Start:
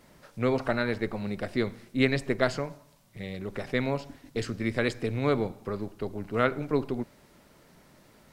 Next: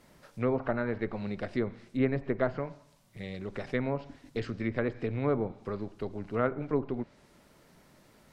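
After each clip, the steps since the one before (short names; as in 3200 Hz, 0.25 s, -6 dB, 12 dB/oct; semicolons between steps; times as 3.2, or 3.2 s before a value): treble ducked by the level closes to 1300 Hz, closed at -22.5 dBFS; gain -2.5 dB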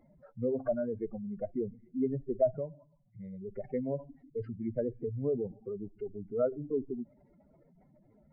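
spectral contrast raised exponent 3.1; small resonant body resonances 750/2100 Hz, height 13 dB, ringing for 20 ms; gain -3.5 dB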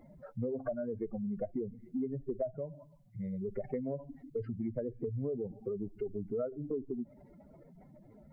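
compressor 6:1, threshold -40 dBFS, peak gain reduction 17 dB; gain +6.5 dB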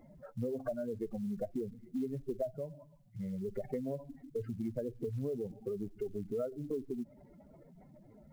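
short-mantissa float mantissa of 4-bit; gain -1 dB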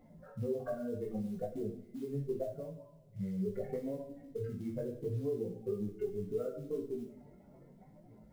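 two-slope reverb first 0.53 s, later 2.4 s, from -25 dB, DRR 1 dB; chorus 0.73 Hz, delay 17.5 ms, depth 3.9 ms; gain +1 dB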